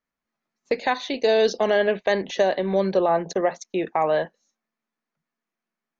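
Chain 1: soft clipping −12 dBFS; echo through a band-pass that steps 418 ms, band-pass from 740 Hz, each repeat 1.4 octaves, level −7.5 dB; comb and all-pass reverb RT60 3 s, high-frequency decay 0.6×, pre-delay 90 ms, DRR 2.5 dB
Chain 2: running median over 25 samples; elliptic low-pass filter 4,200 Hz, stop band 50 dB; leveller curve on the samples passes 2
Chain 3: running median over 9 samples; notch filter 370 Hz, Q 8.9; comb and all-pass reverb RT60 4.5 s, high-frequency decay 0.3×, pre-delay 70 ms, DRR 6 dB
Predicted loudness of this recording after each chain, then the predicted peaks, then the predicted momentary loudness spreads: −22.0, −20.0, −22.5 LKFS; −9.0, −11.0, −8.5 dBFS; 12, 6, 16 LU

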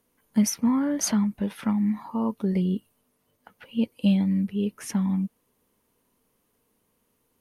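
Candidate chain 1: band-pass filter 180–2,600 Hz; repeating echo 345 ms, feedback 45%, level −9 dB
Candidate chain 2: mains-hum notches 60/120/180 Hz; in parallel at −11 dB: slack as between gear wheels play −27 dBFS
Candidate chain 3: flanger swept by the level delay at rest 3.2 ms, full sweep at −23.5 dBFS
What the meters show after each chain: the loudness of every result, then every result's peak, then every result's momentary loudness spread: −28.0, −24.0, −26.5 LKFS; −13.5, −9.0, −11.5 dBFS; 15, 7, 7 LU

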